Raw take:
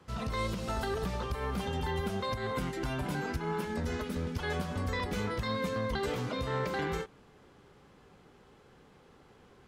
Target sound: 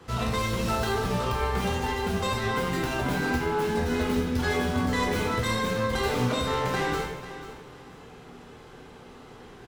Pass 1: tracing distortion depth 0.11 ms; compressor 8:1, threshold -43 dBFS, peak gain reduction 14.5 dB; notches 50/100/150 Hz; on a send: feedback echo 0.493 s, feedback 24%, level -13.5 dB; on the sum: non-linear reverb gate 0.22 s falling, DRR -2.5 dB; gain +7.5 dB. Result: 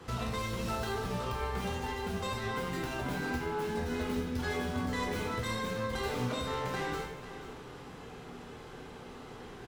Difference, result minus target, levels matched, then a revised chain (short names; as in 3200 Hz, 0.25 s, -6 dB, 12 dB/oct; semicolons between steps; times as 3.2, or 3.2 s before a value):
compressor: peak gain reduction +8 dB
tracing distortion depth 0.11 ms; compressor 8:1, threshold -34 dBFS, peak gain reduction 6.5 dB; notches 50/100/150 Hz; on a send: feedback echo 0.493 s, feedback 24%, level -13.5 dB; on the sum: non-linear reverb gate 0.22 s falling, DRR -2.5 dB; gain +7.5 dB